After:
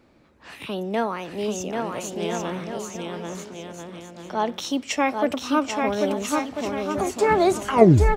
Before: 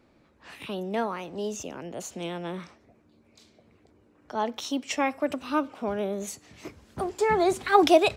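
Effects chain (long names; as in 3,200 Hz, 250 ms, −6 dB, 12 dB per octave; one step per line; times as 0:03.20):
turntable brake at the end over 0.64 s
bouncing-ball delay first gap 790 ms, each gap 0.7×, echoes 5
level +4 dB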